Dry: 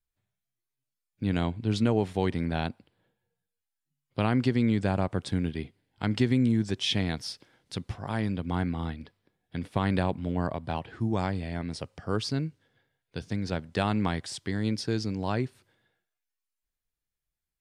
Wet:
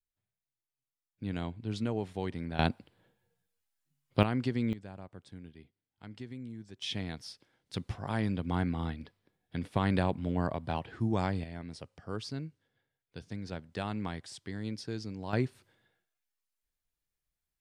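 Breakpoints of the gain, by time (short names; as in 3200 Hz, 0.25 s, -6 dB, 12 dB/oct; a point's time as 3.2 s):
-8.5 dB
from 2.59 s +3.5 dB
from 4.23 s -6.5 dB
from 4.73 s -19.5 dB
from 6.82 s -9 dB
from 7.74 s -2 dB
from 11.44 s -9 dB
from 15.33 s -0.5 dB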